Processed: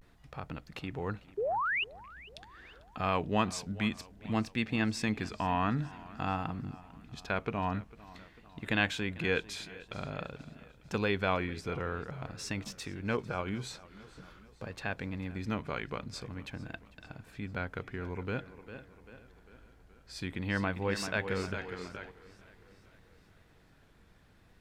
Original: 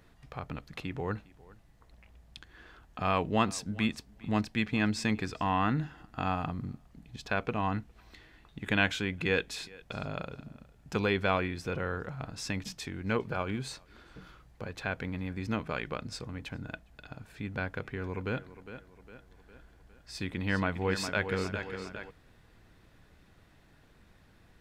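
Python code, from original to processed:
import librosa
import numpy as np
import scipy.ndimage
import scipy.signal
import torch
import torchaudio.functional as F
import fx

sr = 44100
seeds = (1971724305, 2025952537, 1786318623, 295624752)

y = fx.spec_paint(x, sr, seeds[0], shape='rise', start_s=1.38, length_s=0.45, low_hz=400.0, high_hz=3100.0, level_db=-29.0)
y = fx.vibrato(y, sr, rate_hz=0.49, depth_cents=77.0)
y = fx.echo_warbled(y, sr, ms=447, feedback_pct=55, rate_hz=2.8, cents=68, wet_db=-20.0)
y = y * 10.0 ** (-2.0 / 20.0)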